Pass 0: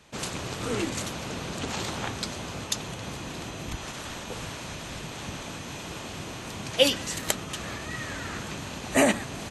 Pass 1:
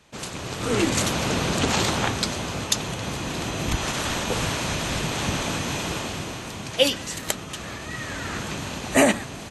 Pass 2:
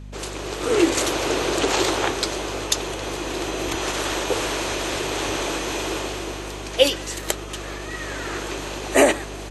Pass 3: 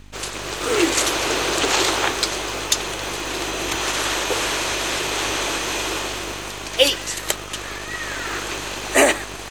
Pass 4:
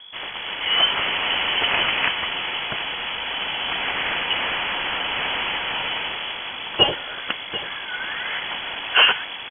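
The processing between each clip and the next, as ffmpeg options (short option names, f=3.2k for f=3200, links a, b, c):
-af "dynaudnorm=f=310:g=5:m=12dB,volume=-1dB"
-af "lowshelf=f=260:t=q:w=3:g=-10,aeval=exprs='val(0)+0.0141*(sin(2*PI*50*n/s)+sin(2*PI*2*50*n/s)/2+sin(2*PI*3*50*n/s)/3+sin(2*PI*4*50*n/s)/4+sin(2*PI*5*50*n/s)/5)':c=same,volume=1dB"
-filter_complex "[0:a]acrossover=split=900[a][b];[a]acrusher=bits=6:dc=4:mix=0:aa=0.000001[c];[b]acontrast=71[d];[c][d]amix=inputs=2:normalize=0,volume=-2dB"
-af "aecho=1:1:739:0.2,lowpass=f=2.9k:t=q:w=0.5098,lowpass=f=2.9k:t=q:w=0.6013,lowpass=f=2.9k:t=q:w=0.9,lowpass=f=2.9k:t=q:w=2.563,afreqshift=-3400"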